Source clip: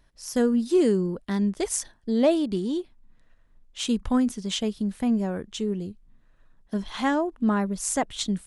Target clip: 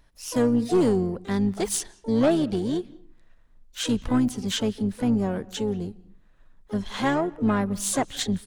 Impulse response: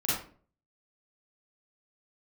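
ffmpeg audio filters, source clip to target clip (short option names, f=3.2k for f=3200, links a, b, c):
-filter_complex "[0:a]asplit=4[a][b][c][d];[b]asetrate=22050,aresample=44100,atempo=2,volume=-11dB[e];[c]asetrate=55563,aresample=44100,atempo=0.793701,volume=-16dB[f];[d]asetrate=88200,aresample=44100,atempo=0.5,volume=-16dB[g];[a][e][f][g]amix=inputs=4:normalize=0,aeval=exprs='(tanh(5.62*val(0)+0.2)-tanh(0.2))/5.62':c=same,asplit=2[h][i];[1:a]atrim=start_sample=2205,lowpass=6.3k,adelay=130[j];[i][j]afir=irnorm=-1:irlink=0,volume=-31.5dB[k];[h][k]amix=inputs=2:normalize=0,volume=1.5dB"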